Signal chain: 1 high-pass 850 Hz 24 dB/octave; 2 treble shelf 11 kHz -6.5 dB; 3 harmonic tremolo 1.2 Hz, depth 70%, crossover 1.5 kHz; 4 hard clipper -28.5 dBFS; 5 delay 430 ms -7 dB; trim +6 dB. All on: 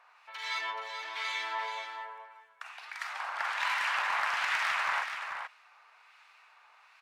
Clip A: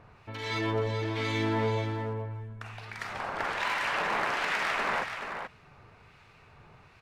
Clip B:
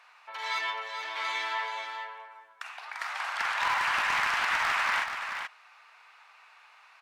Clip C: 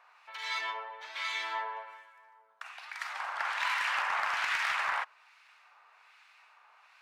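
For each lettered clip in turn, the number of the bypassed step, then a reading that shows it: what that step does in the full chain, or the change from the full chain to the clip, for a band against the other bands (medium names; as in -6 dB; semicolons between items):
1, 500 Hz band +15.5 dB; 3, crest factor change -3.0 dB; 5, momentary loudness spread change -1 LU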